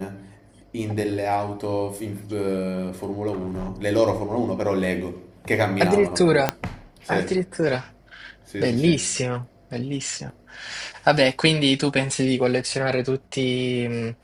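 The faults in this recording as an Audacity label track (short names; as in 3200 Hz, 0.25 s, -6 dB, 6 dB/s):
3.320000	3.730000	clipped -25.5 dBFS
6.490000	6.490000	pop -4 dBFS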